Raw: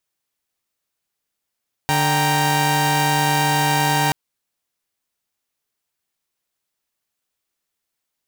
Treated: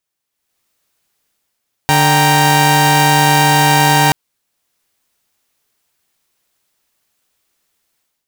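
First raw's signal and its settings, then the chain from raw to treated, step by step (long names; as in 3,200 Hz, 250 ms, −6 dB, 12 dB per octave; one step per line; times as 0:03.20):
held notes D3/G5/A#5 saw, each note −18 dBFS 2.23 s
automatic gain control gain up to 12.5 dB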